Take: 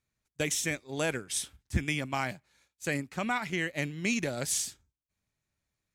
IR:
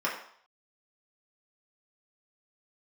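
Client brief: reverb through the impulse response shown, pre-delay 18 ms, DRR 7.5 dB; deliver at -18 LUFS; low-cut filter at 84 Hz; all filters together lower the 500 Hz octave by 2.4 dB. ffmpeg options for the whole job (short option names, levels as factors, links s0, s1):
-filter_complex "[0:a]highpass=84,equalizer=f=500:t=o:g=-3,asplit=2[s0][s1];[1:a]atrim=start_sample=2205,adelay=18[s2];[s1][s2]afir=irnorm=-1:irlink=0,volume=0.133[s3];[s0][s3]amix=inputs=2:normalize=0,volume=5.01"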